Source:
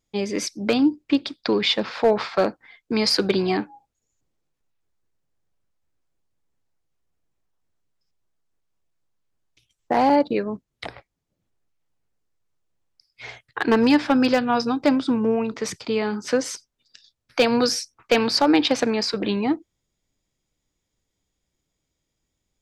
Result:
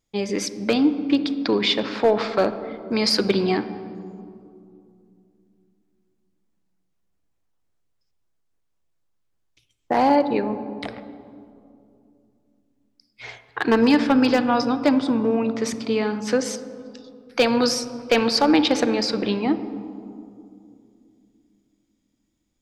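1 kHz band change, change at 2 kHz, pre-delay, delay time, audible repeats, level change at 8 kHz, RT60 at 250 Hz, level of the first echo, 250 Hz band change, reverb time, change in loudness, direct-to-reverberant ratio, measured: +0.5 dB, 0.0 dB, 39 ms, none, none, 0.0 dB, 3.5 s, none, +1.0 dB, 2.6 s, +0.5 dB, 11.0 dB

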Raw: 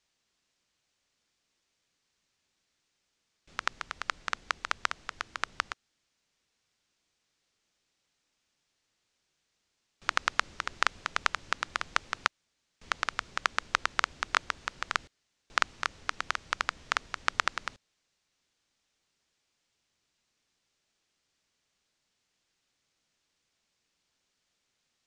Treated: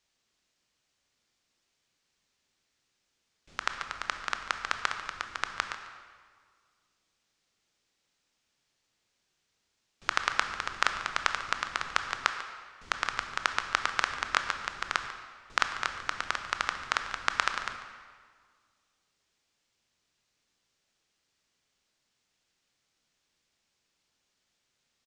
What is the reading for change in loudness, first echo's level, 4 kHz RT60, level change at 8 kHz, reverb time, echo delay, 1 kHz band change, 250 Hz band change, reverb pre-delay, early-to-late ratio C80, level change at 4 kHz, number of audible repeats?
+0.5 dB, -15.5 dB, 1.3 s, +0.5 dB, 1.8 s, 0.144 s, +1.0 dB, +1.0 dB, 18 ms, 8.5 dB, +1.0 dB, 1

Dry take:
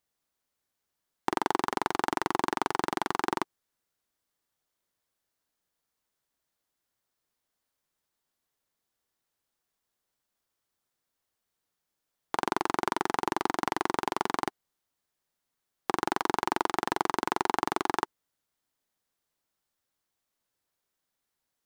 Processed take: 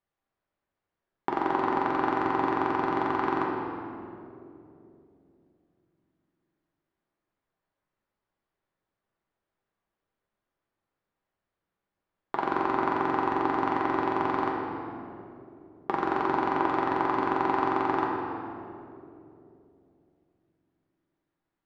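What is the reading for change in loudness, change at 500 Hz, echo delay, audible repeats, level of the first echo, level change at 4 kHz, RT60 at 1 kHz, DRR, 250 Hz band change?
+2.5 dB, +4.5 dB, none, none, none, -7.5 dB, 2.3 s, -2.5 dB, +5.0 dB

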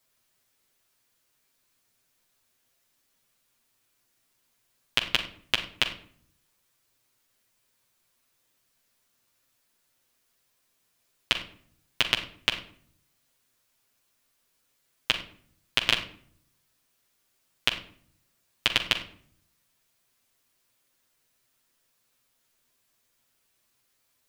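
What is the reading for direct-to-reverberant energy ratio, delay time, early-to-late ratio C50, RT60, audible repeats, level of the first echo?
-1.0 dB, none, 10.0 dB, 0.55 s, none, none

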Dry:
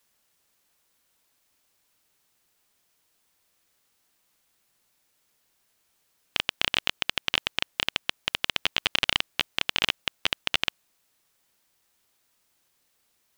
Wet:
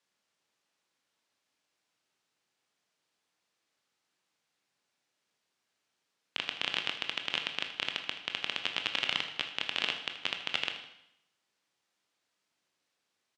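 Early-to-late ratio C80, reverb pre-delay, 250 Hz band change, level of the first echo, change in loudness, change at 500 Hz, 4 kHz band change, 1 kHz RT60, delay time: 10.0 dB, 20 ms, -7.0 dB, -14.5 dB, -6.5 dB, -6.5 dB, -6.5 dB, 0.80 s, 79 ms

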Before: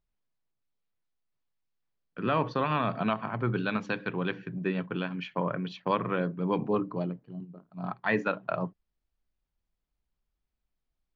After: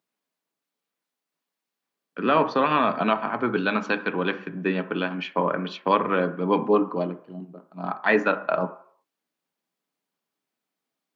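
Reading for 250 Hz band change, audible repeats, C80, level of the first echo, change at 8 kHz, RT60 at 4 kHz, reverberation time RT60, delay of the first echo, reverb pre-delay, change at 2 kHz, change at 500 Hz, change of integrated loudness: +5.0 dB, none, 17.5 dB, none, n/a, 0.65 s, 0.60 s, none, 3 ms, +7.5 dB, +7.5 dB, +6.5 dB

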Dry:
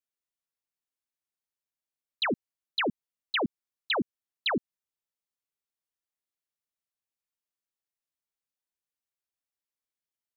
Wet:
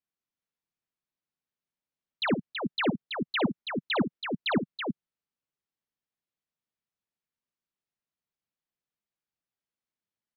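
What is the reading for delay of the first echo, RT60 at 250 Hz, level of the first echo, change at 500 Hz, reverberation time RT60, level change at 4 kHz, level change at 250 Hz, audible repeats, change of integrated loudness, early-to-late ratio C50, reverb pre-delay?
56 ms, none, -9.5 dB, +2.0 dB, none, -1.5 dB, +6.0 dB, 2, +1.0 dB, none, none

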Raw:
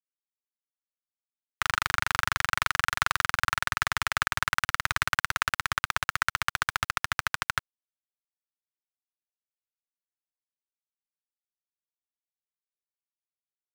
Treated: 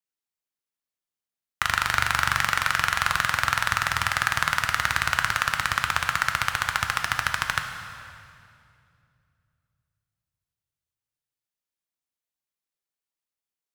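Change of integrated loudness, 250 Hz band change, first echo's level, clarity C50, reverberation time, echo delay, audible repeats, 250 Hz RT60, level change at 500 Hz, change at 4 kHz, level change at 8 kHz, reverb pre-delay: +4.0 dB, +4.5 dB, none, 6.0 dB, 2.5 s, none, none, 3.1 s, +4.0 dB, +3.5 dB, +3.5 dB, 6 ms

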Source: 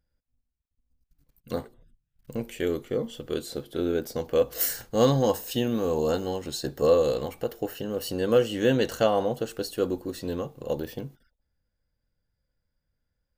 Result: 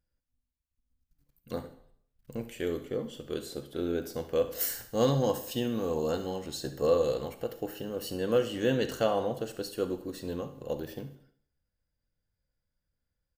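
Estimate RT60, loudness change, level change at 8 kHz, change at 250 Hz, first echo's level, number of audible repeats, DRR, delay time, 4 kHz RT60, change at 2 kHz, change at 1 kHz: 0.60 s, -4.5 dB, -4.5 dB, -4.5 dB, -16.0 dB, 1, 9.5 dB, 70 ms, 0.60 s, -4.5 dB, -4.5 dB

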